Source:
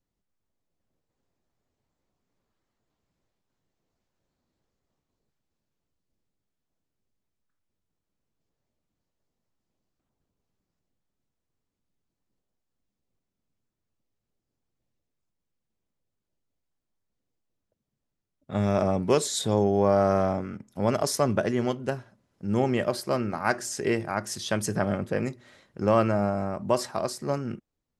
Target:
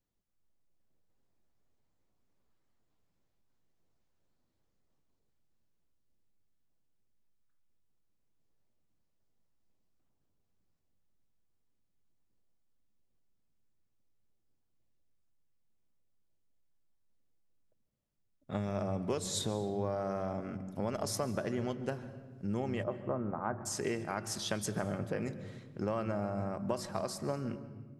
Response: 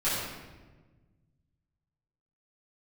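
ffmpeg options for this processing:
-filter_complex "[0:a]asplit=3[a][b][c];[a]afade=t=out:st=22.82:d=0.02[d];[b]lowpass=f=1.3k:w=0.5412,lowpass=f=1.3k:w=1.3066,afade=t=in:st=22.82:d=0.02,afade=t=out:st=23.65:d=0.02[e];[c]afade=t=in:st=23.65:d=0.02[f];[d][e][f]amix=inputs=3:normalize=0,acompressor=threshold=-28dB:ratio=5,asplit=2[g][h];[1:a]atrim=start_sample=2205,lowshelf=f=190:g=9.5,adelay=130[i];[h][i]afir=irnorm=-1:irlink=0,volume=-25dB[j];[g][j]amix=inputs=2:normalize=0,volume=-3.5dB"

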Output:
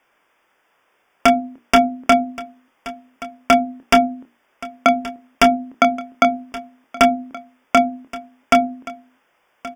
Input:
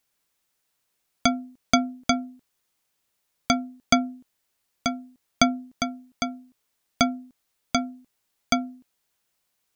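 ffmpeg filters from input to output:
-filter_complex "[0:a]acrossover=split=270 2600:gain=0.178 1 0.0631[a][b][c];[a][b][c]amix=inputs=3:normalize=0,bandreject=f=60:t=h:w=6,bandreject=f=120:t=h:w=6,bandreject=f=180:t=h:w=6,bandreject=f=240:t=h:w=6,bandreject=f=300:t=h:w=6,bandreject=f=360:t=h:w=6,bandreject=f=420:t=h:w=6,asplit=2[d][e];[e]acompressor=threshold=-32dB:ratio=10,volume=2dB[f];[d][f]amix=inputs=2:normalize=0,aeval=exprs='0.211*(abs(mod(val(0)/0.211+3,4)-2)-1)':c=same,asuperstop=centerf=4100:order=12:qfactor=3.8,asplit=2[g][h];[h]adelay=26,volume=-9dB[i];[g][i]amix=inputs=2:normalize=0,asplit=2[j][k];[k]aecho=0:1:1125:0.0794[l];[j][l]amix=inputs=2:normalize=0,alimiter=level_in=15.5dB:limit=-1dB:release=50:level=0:latency=1,volume=-1dB"

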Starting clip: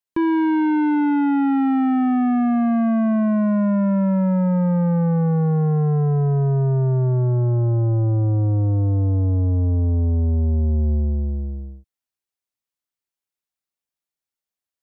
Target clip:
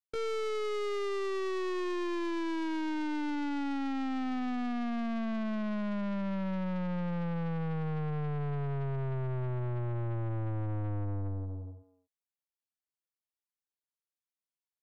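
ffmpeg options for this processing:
-filter_complex "[0:a]asplit=2[a][b];[b]adelay=240,highpass=300,lowpass=3.4k,asoftclip=type=hard:threshold=-26dB,volume=-8dB[c];[a][c]amix=inputs=2:normalize=0,aeval=exprs='(tanh(17.8*val(0)+0.5)-tanh(0.5))/17.8':c=same,asetrate=60591,aresample=44100,atempo=0.727827,volume=-8dB"

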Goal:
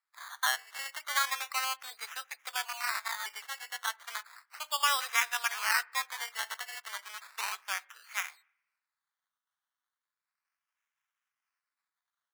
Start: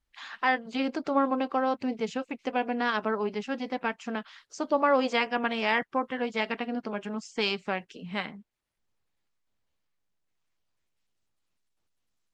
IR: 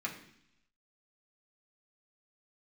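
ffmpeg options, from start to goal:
-filter_complex "[0:a]asettb=1/sr,asplit=3[a][b][c];[a]atrim=end=2.654[d];[b]atrim=start=2.65:end=3.26,asetpts=PTS-STARTPTS,afade=t=in:d=0.004:c=qsin,afade=t=out:st=0.606:d=0.004:c=qsin,aeval=exprs='val(0)*sin(2*PI*470*n/s)':c=same[e];[c]atrim=start=3.256[f];[d][e]acrossfade=d=0.004:c1=hsin:c2=qsin[g];[g][f]acrossfade=d=0.004:c1=qsin:c2=hsin,acrusher=samples=14:mix=1:aa=0.000001:lfo=1:lforange=8.4:lforate=0.34,highpass=f=1.1k:w=0.5412,highpass=f=1.1k:w=1.3066,asplit=2[h][i];[1:a]atrim=start_sample=2205,lowpass=2.3k[j];[i][j]afir=irnorm=-1:irlink=0,volume=-17dB[k];[h][k]amix=inputs=2:normalize=0"

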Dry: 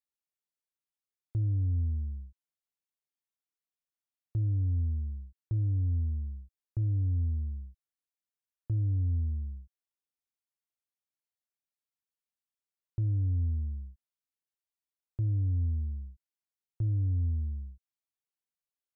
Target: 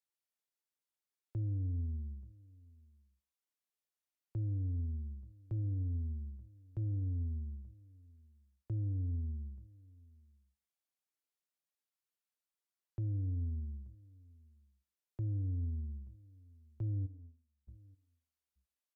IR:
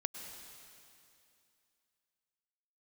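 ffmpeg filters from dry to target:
-filter_complex "[0:a]asplit=3[a][b][c];[a]afade=t=out:st=17.05:d=0.02[d];[b]agate=range=-40dB:threshold=-26dB:ratio=16:detection=peak,afade=t=in:st=17.05:d=0.02,afade=t=out:st=17.67:d=0.02[e];[c]afade=t=in:st=17.67:d=0.02[f];[d][e][f]amix=inputs=3:normalize=0,aecho=1:1:882:0.0631,acrossover=split=210[g][h];[h]acontrast=74[i];[g][i]amix=inputs=2:normalize=0[j];[1:a]atrim=start_sample=2205,atrim=end_sample=4410,asetrate=32193,aresample=44100[k];[j][k]afir=irnorm=-1:irlink=0,volume=-8dB"

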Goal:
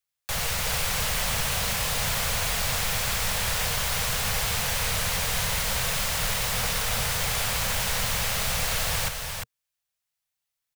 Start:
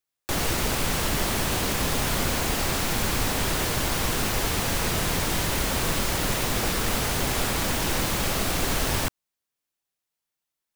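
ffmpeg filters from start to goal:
-filter_complex "[0:a]firequalizer=gain_entry='entry(120,0);entry(200,-7);entry(320,-27);entry(460,-5);entry(2100,0)':delay=0.05:min_phase=1,acrossover=split=350|600|2000[a][b][c][d];[a]alimiter=level_in=3.5dB:limit=-24dB:level=0:latency=1:release=48,volume=-3.5dB[e];[e][b][c][d]amix=inputs=4:normalize=0,aecho=1:1:351:0.531"

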